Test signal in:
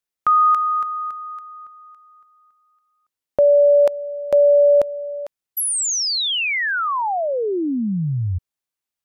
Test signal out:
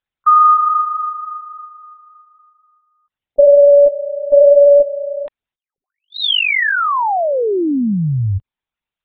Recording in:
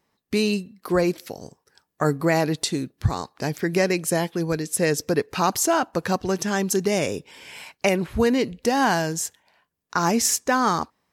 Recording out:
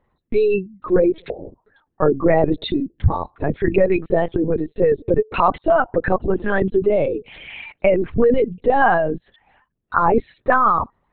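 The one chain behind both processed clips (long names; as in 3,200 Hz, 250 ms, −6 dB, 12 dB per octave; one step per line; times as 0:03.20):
spectral envelope exaggerated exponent 2
linear-prediction vocoder at 8 kHz pitch kept
level +5.5 dB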